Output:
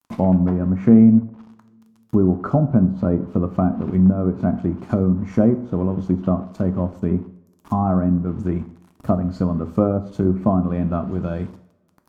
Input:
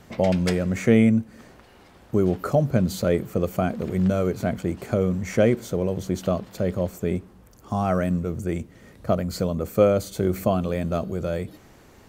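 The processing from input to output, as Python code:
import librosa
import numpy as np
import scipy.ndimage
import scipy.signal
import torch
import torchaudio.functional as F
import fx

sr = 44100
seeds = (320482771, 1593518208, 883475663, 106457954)

y = np.where(np.abs(x) >= 10.0 ** (-41.0 / 20.0), x, 0.0)
y = fx.graphic_eq(y, sr, hz=(250, 500, 1000, 2000, 4000, 8000), db=(8, -9, 8, -8, -5, -5))
y = fx.transient(y, sr, attack_db=1, sustain_db=-4)
y = fx.env_lowpass_down(y, sr, base_hz=990.0, full_db=-16.5)
y = fx.rev_double_slope(y, sr, seeds[0], early_s=0.58, late_s=2.6, knee_db=-28, drr_db=8.5)
y = y * 10.0 ** (2.0 / 20.0)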